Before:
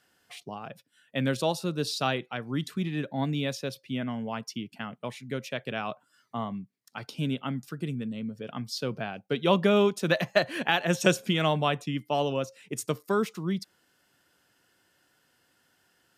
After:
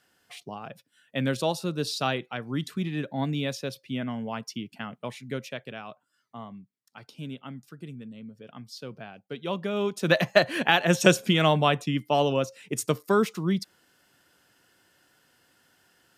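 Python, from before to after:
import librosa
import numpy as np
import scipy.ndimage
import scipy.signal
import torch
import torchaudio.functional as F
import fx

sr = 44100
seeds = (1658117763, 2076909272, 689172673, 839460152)

y = fx.gain(x, sr, db=fx.line((5.37, 0.5), (5.84, -8.0), (9.72, -8.0), (10.14, 4.0)))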